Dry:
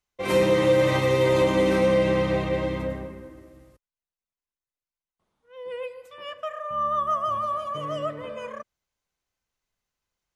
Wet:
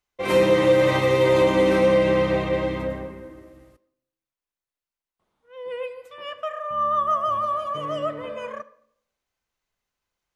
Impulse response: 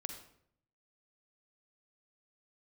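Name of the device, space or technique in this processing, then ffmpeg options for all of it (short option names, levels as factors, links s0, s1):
filtered reverb send: -filter_complex "[0:a]asplit=2[s0][s1];[s1]highpass=220,lowpass=4700[s2];[1:a]atrim=start_sample=2205[s3];[s2][s3]afir=irnorm=-1:irlink=0,volume=0.531[s4];[s0][s4]amix=inputs=2:normalize=0"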